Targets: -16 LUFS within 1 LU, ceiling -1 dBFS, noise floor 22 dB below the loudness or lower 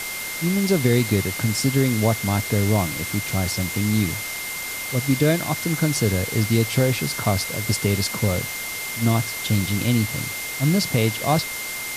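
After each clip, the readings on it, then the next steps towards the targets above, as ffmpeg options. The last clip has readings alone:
steady tone 2100 Hz; tone level -31 dBFS; noise floor -30 dBFS; noise floor target -44 dBFS; loudness -22.0 LUFS; peak -6.5 dBFS; loudness target -16.0 LUFS
-> -af "bandreject=f=2.1k:w=30"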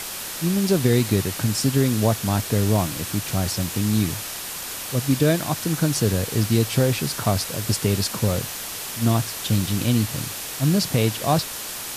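steady tone none; noise floor -32 dBFS; noise floor target -45 dBFS
-> -af "afftdn=nr=13:nf=-32"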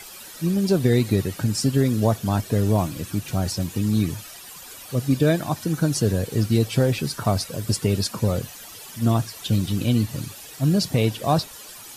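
noise floor -41 dBFS; noise floor target -45 dBFS
-> -af "afftdn=nr=6:nf=-41"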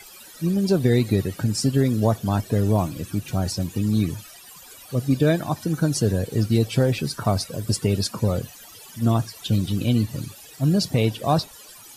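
noise floor -45 dBFS; loudness -23.0 LUFS; peak -7.0 dBFS; loudness target -16.0 LUFS
-> -af "volume=7dB,alimiter=limit=-1dB:level=0:latency=1"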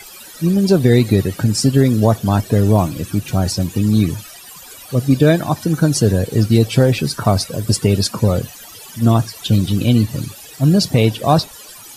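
loudness -16.0 LUFS; peak -1.0 dBFS; noise floor -38 dBFS

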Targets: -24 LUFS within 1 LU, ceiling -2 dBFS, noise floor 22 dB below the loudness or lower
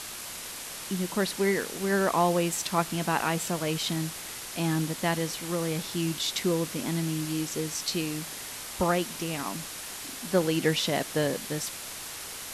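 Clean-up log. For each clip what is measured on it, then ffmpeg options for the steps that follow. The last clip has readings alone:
noise floor -40 dBFS; noise floor target -51 dBFS; loudness -29.0 LUFS; peak -11.0 dBFS; loudness target -24.0 LUFS
-> -af "afftdn=nr=11:nf=-40"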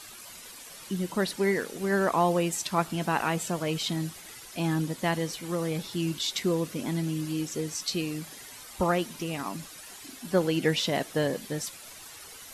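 noise floor -46 dBFS; noise floor target -51 dBFS
-> -af "afftdn=nr=6:nf=-46"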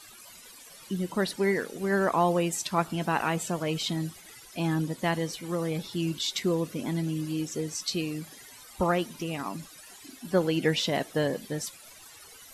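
noise floor -50 dBFS; noise floor target -52 dBFS
-> -af "afftdn=nr=6:nf=-50"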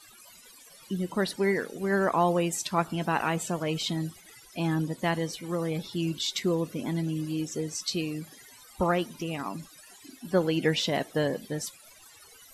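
noise floor -53 dBFS; loudness -29.5 LUFS; peak -11.0 dBFS; loudness target -24.0 LUFS
-> -af "volume=5.5dB"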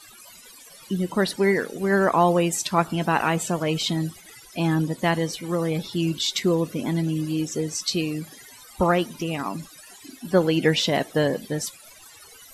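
loudness -24.0 LUFS; peak -5.5 dBFS; noise floor -48 dBFS

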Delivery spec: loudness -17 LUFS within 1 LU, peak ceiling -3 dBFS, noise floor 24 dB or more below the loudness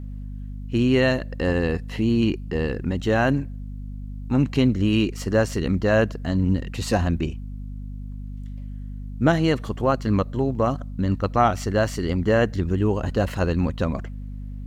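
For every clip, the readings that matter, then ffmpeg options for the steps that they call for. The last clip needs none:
hum 50 Hz; harmonics up to 250 Hz; hum level -31 dBFS; loudness -23.0 LUFS; peak -6.0 dBFS; loudness target -17.0 LUFS
-> -af "bandreject=f=50:t=h:w=4,bandreject=f=100:t=h:w=4,bandreject=f=150:t=h:w=4,bandreject=f=200:t=h:w=4,bandreject=f=250:t=h:w=4"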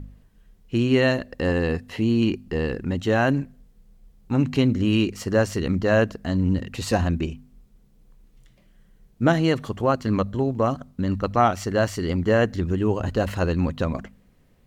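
hum none; loudness -23.5 LUFS; peak -6.0 dBFS; loudness target -17.0 LUFS
-> -af "volume=6.5dB,alimiter=limit=-3dB:level=0:latency=1"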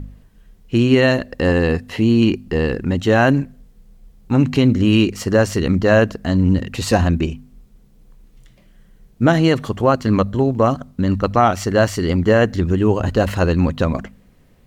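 loudness -17.0 LUFS; peak -3.0 dBFS; noise floor -52 dBFS

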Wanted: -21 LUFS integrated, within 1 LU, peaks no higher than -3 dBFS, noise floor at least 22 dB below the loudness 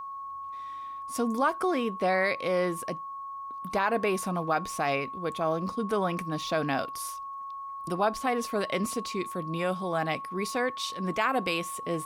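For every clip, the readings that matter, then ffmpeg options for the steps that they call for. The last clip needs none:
steady tone 1100 Hz; tone level -36 dBFS; loudness -30.0 LUFS; peak -13.0 dBFS; loudness target -21.0 LUFS
-> -af "bandreject=f=1.1k:w=30"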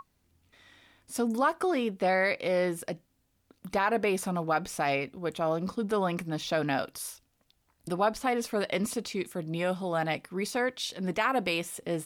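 steady tone none; loudness -30.0 LUFS; peak -14.0 dBFS; loudness target -21.0 LUFS
-> -af "volume=9dB"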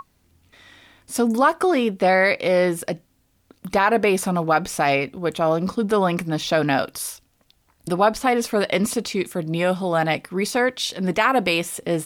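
loudness -21.0 LUFS; peak -5.0 dBFS; noise floor -64 dBFS

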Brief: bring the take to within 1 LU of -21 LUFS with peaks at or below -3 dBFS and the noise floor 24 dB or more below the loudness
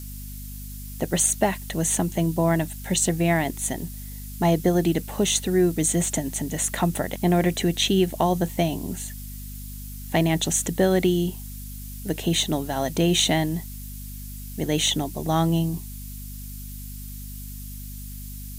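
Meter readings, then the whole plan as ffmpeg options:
hum 50 Hz; harmonics up to 250 Hz; hum level -35 dBFS; noise floor -36 dBFS; noise floor target -48 dBFS; loudness -23.5 LUFS; peak -7.5 dBFS; loudness target -21.0 LUFS
-> -af "bandreject=f=50:t=h:w=6,bandreject=f=100:t=h:w=6,bandreject=f=150:t=h:w=6,bandreject=f=200:t=h:w=6,bandreject=f=250:t=h:w=6"
-af "afftdn=nr=12:nf=-36"
-af "volume=2.5dB"

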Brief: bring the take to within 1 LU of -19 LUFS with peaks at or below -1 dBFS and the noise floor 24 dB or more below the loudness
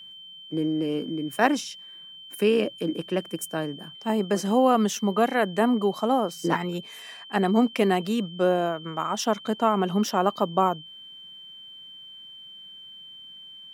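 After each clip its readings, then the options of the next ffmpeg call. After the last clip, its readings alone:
steady tone 3100 Hz; tone level -42 dBFS; loudness -25.0 LUFS; peak -4.5 dBFS; loudness target -19.0 LUFS
-> -af "bandreject=f=3.1k:w=30"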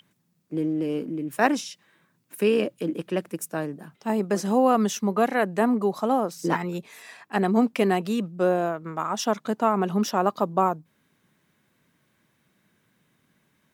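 steady tone none; loudness -25.0 LUFS; peak -4.5 dBFS; loudness target -19.0 LUFS
-> -af "volume=6dB,alimiter=limit=-1dB:level=0:latency=1"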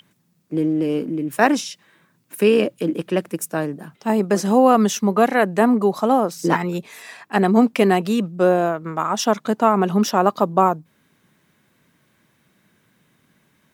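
loudness -19.0 LUFS; peak -1.0 dBFS; noise floor -63 dBFS

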